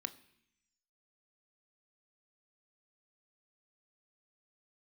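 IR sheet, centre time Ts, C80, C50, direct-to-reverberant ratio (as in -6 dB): 4 ms, 20.0 dB, 17.5 dB, 11.0 dB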